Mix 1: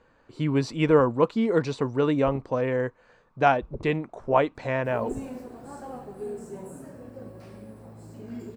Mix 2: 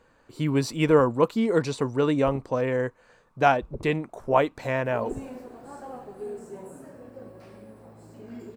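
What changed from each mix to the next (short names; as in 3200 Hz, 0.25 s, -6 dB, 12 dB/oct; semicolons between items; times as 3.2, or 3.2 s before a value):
speech: remove air absorption 87 m; second sound: add tone controls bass -6 dB, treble -3 dB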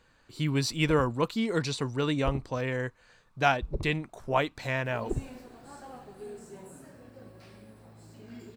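first sound +8.0 dB; master: add graphic EQ 250/500/1000/4000 Hz -4/-7/-4/+5 dB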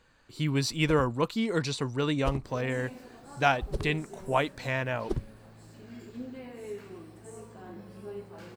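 first sound: remove running mean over 28 samples; second sound: entry -2.40 s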